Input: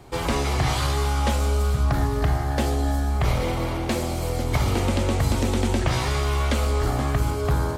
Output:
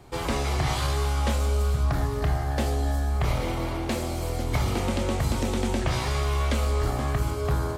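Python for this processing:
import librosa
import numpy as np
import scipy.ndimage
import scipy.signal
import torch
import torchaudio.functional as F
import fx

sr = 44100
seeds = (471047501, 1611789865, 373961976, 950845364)

y = fx.doubler(x, sr, ms=27.0, db=-11.0)
y = y * librosa.db_to_amplitude(-3.5)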